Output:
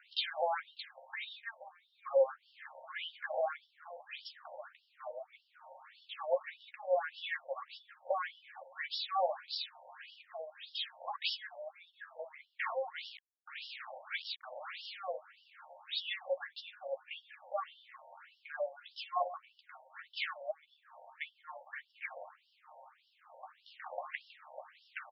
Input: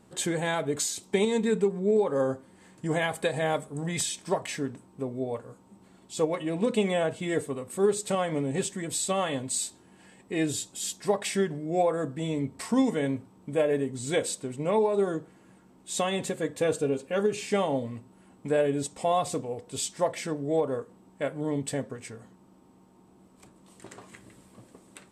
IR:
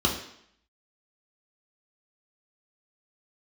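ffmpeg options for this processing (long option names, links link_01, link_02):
-filter_complex "[0:a]alimiter=limit=-24dB:level=0:latency=1:release=335,highshelf=frequency=2500:gain=-8,acompressor=threshold=-40dB:ratio=3,asplit=2[link_01][link_02];[link_02]adelay=13,volume=-6.5dB[link_03];[link_01][link_03]amix=inputs=2:normalize=0,asettb=1/sr,asplit=3[link_04][link_05][link_06];[link_04]atrim=end=12.984[link_07];[link_05]atrim=start=12.98:end=15,asetpts=PTS-STARTPTS,afade=type=in:duration=0.004:curve=qsin,afade=type=out:start_time=2.016:duration=0.004:curve=qsin,aeval=exprs='val(0)*gte(abs(val(0)),0.00501)':channel_layout=same[link_08];[link_06]atrim=start=14.996[link_09];[link_07][link_08]acrossfade=duration=0.004:curve1=hsin:curve2=qsin[link_10];[link_10][link_09]acrossfade=duration=0.004:curve1=qsin:curve2=hsin,bandreject=frequency=970:width=6.1,afftfilt=real='re*between(b*sr/1024,680*pow(4000/680,0.5+0.5*sin(2*PI*1.7*pts/sr))/1.41,680*pow(4000/680,0.5+0.5*sin(2*PI*1.7*pts/sr))*1.41)':imag='im*between(b*sr/1024,680*pow(4000/680,0.5+0.5*sin(2*PI*1.7*pts/sr))/1.41,680*pow(4000/680,0.5+0.5*sin(2*PI*1.7*pts/sr))*1.41)':win_size=1024:overlap=0.75,volume=14dB"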